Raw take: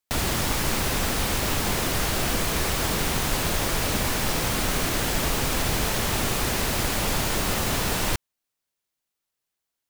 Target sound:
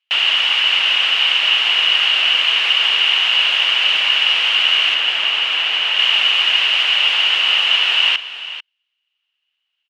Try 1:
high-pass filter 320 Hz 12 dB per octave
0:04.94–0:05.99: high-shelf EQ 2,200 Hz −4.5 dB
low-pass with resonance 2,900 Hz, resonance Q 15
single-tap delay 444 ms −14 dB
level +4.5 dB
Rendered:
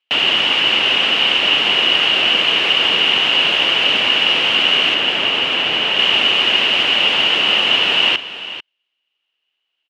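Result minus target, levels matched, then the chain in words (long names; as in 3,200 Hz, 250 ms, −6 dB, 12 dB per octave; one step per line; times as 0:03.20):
250 Hz band +19.0 dB
high-pass filter 1,100 Hz 12 dB per octave
0:04.94–0:05.99: high-shelf EQ 2,200 Hz −4.5 dB
low-pass with resonance 2,900 Hz, resonance Q 15
single-tap delay 444 ms −14 dB
level +4.5 dB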